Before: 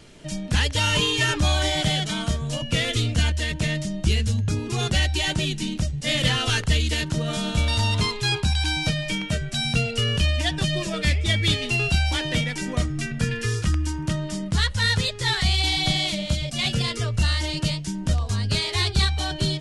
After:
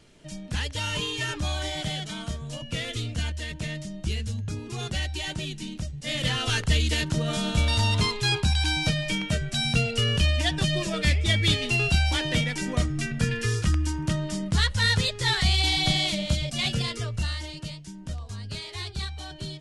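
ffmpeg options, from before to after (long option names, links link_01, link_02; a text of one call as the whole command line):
ffmpeg -i in.wav -af "volume=-1dB,afade=type=in:start_time=5.99:duration=0.85:silence=0.446684,afade=type=out:start_time=16.39:duration=1.2:silence=0.281838" out.wav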